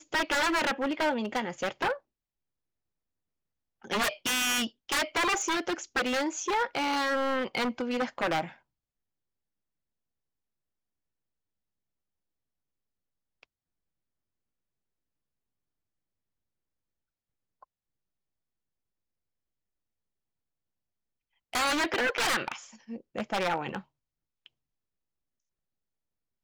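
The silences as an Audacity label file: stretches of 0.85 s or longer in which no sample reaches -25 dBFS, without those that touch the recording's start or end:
1.920000	3.910000	silence
8.410000	21.550000	silence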